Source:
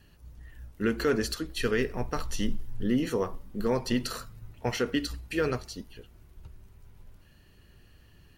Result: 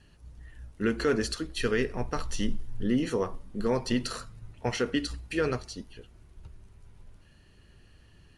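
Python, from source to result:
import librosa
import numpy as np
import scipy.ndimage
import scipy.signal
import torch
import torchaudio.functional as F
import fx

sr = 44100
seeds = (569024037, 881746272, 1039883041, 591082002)

y = scipy.signal.sosfilt(scipy.signal.butter(12, 11000.0, 'lowpass', fs=sr, output='sos'), x)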